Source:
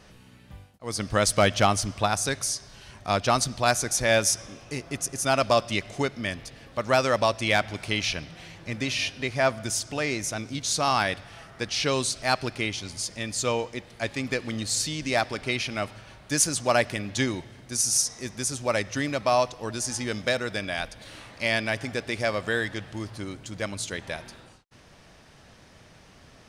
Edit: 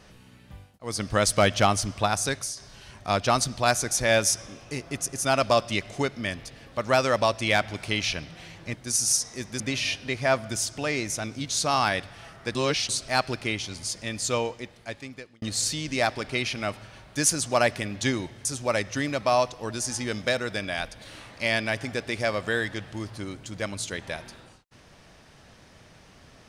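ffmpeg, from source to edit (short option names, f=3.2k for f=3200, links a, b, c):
-filter_complex "[0:a]asplit=8[a][b][c][d][e][f][g][h];[a]atrim=end=2.57,asetpts=PTS-STARTPTS,afade=t=out:st=2.31:d=0.26:silence=0.375837[i];[b]atrim=start=2.57:end=8.742,asetpts=PTS-STARTPTS,afade=t=in:d=0.004:c=hsin:silence=0.375837[j];[c]atrim=start=17.588:end=18.452[k];[d]atrim=start=8.738:end=11.692[l];[e]atrim=start=11.688:end=12.032,asetpts=PTS-STARTPTS,areverse[m];[f]atrim=start=12.028:end=14.56,asetpts=PTS-STARTPTS,afade=t=out:st=1.452:d=1.08[n];[g]atrim=start=14.56:end=17.592,asetpts=PTS-STARTPTS,afade=t=in:d=0.004:c=hsin[o];[h]atrim=start=18.448[p];[i][j]concat=n=2:v=0:a=1[q];[q][k]acrossfade=d=0.004:c1=hsin:c2=hsin[r];[r][l]acrossfade=d=0.004:c1=hsin:c2=hsin[s];[s][m]acrossfade=d=0.004:c1=hsin:c2=hsin[t];[n][o]concat=n=2:v=0:a=1[u];[t][u]acrossfade=d=0.004:c1=hsin:c2=hsin[v];[v][p]acrossfade=d=0.004:c1=hsin:c2=hsin"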